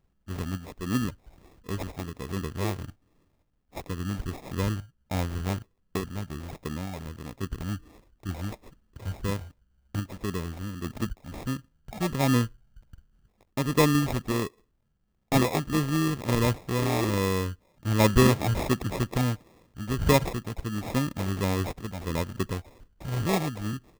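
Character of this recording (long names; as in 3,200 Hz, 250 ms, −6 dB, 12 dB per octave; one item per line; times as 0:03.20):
sample-and-hold tremolo
phaser sweep stages 12, 1.4 Hz, lowest notch 490–1,400 Hz
aliases and images of a low sample rate 1,500 Hz, jitter 0%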